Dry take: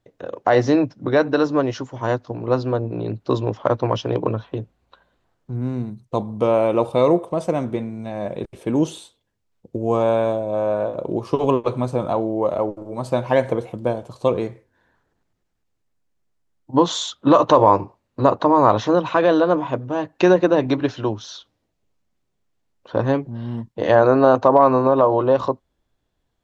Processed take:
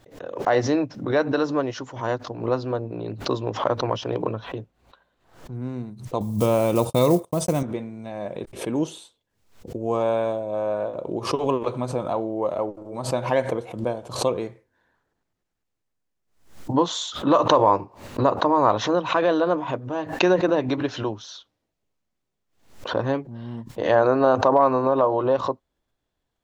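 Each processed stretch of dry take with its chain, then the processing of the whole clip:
0:06.20–0:07.63: one scale factor per block 7 bits + bass and treble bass +12 dB, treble +15 dB + noise gate −25 dBFS, range −60 dB
whole clip: low-shelf EQ 270 Hz −4.5 dB; background raised ahead of every attack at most 110 dB per second; level −3.5 dB

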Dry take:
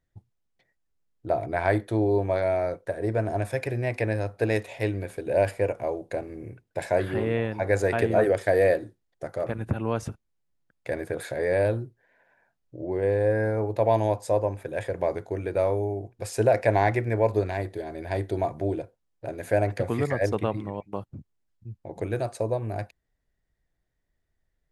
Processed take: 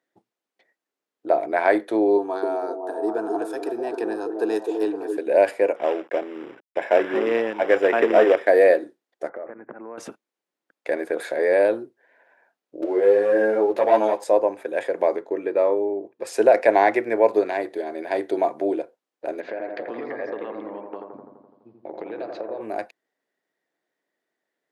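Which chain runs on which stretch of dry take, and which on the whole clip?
0:02.17–0:05.17: phaser with its sweep stopped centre 570 Hz, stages 6 + echo through a band-pass that steps 256 ms, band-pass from 400 Hz, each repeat 0.7 octaves, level −2 dB
0:05.76–0:08.47: log-companded quantiser 4 bits + Savitzky-Golay smoothing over 25 samples
0:09.29–0:09.98: Butterworth low-pass 2,200 Hz 72 dB per octave + downward compressor, threshold −36 dBFS
0:12.82–0:14.24: leveller curve on the samples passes 1 + upward compression, threshold −22 dBFS + string-ensemble chorus
0:15.16–0:16.27: low-pass filter 2,900 Hz 6 dB per octave + notch comb filter 730 Hz
0:19.40–0:22.61: Butterworth low-pass 4,800 Hz + downward compressor 5 to 1, threshold −34 dBFS + bucket-brigade delay 84 ms, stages 1,024, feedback 67%, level −4 dB
whole clip: high-pass filter 280 Hz 24 dB per octave; high-shelf EQ 5,100 Hz −8.5 dB; level +6 dB

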